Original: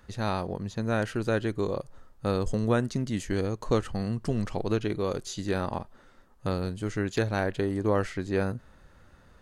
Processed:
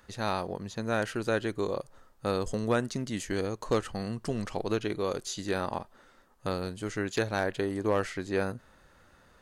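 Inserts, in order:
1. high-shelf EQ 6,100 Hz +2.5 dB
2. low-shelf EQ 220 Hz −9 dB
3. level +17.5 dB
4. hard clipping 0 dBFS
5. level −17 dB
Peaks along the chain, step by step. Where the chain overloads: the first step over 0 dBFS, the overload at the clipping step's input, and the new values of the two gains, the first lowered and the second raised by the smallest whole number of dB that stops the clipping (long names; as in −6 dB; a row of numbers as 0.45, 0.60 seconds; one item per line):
−12.0, −13.5, +4.0, 0.0, −17.0 dBFS
step 3, 4.0 dB
step 3 +13.5 dB, step 5 −13 dB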